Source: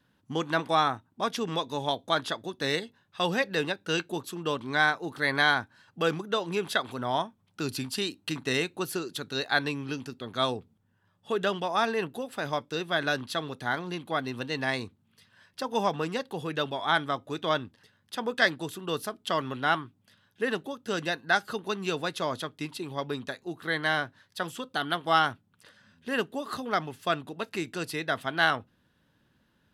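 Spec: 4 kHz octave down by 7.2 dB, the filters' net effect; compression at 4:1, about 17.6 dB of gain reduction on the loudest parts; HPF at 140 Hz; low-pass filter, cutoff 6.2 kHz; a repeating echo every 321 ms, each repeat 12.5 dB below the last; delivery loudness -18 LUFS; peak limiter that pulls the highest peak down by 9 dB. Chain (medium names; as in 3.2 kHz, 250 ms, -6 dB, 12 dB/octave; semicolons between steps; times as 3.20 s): high-pass 140 Hz; low-pass 6.2 kHz; peaking EQ 4 kHz -8.5 dB; compression 4:1, threshold -41 dBFS; peak limiter -32.5 dBFS; feedback delay 321 ms, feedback 24%, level -12.5 dB; trim +27.5 dB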